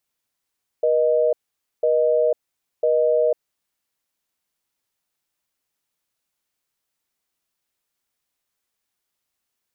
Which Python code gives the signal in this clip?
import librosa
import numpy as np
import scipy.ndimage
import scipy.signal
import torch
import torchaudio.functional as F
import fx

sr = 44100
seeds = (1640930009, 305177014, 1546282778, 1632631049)

y = fx.call_progress(sr, length_s=2.93, kind='busy tone', level_db=-18.0)